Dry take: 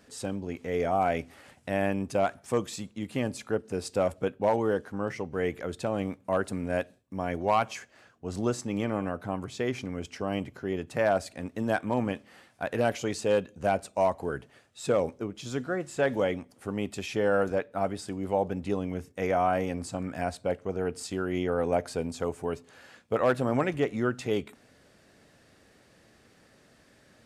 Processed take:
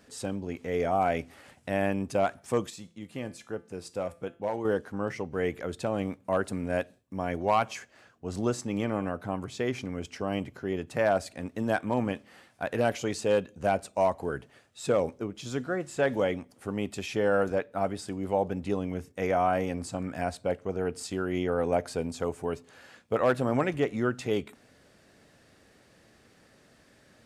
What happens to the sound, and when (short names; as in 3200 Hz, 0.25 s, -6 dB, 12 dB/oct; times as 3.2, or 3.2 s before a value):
2.7–4.65 resonator 170 Hz, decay 0.4 s